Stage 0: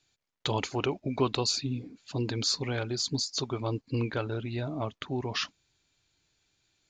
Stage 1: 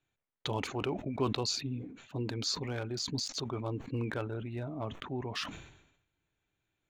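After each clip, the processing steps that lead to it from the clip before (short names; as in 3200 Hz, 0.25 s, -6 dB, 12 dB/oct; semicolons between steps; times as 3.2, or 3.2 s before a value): Wiener smoothing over 9 samples; sustainer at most 69 dB/s; gain -5 dB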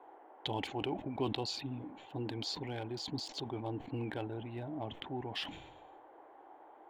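band noise 320–1300 Hz -54 dBFS; thirty-one-band EQ 315 Hz +7 dB, 800 Hz +10 dB, 1250 Hz -11 dB, 2000 Hz +3 dB, 3150 Hz +9 dB, 6300 Hz -9 dB; gain -5.5 dB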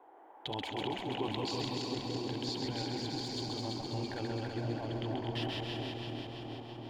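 regenerating reverse delay 0.166 s, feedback 79%, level -3 dB; split-band echo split 620 Hz, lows 0.715 s, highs 0.133 s, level -4 dB; gain -2.5 dB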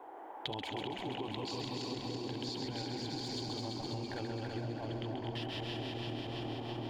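compressor 12:1, threshold -44 dBFS, peak gain reduction 14 dB; gain +8 dB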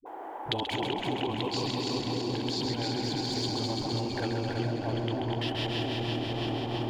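dispersion highs, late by 62 ms, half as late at 350 Hz; gain +8.5 dB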